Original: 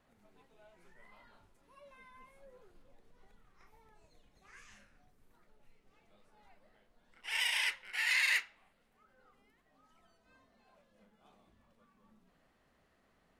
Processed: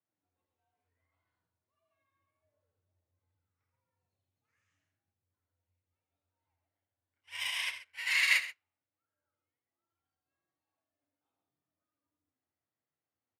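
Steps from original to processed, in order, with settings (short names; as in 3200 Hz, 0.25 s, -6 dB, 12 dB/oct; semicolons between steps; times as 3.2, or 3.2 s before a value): loudspeakers at several distances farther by 28 m -6 dB, 47 m -6 dB; frequency shift +78 Hz; upward expander 2.5:1, over -46 dBFS; gain +4 dB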